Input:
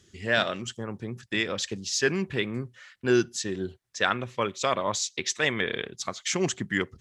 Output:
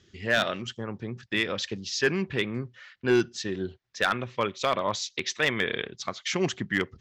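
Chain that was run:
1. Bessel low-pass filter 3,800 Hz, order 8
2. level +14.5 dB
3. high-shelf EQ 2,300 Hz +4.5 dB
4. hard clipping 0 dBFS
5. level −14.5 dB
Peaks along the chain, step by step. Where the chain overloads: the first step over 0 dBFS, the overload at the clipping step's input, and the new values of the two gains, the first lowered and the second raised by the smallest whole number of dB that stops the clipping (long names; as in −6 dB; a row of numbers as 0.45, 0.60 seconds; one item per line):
−6.5, +8.0, +9.5, 0.0, −14.5 dBFS
step 2, 9.5 dB
step 2 +4.5 dB, step 5 −4.5 dB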